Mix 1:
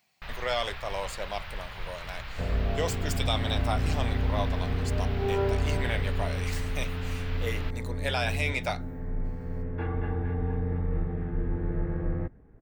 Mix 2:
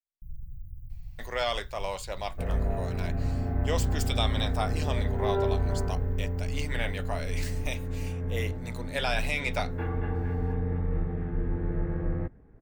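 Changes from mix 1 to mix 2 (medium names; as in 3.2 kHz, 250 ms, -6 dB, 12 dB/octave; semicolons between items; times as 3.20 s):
speech: entry +0.90 s; first sound: add inverse Chebyshev band-stop 630–5400 Hz, stop band 70 dB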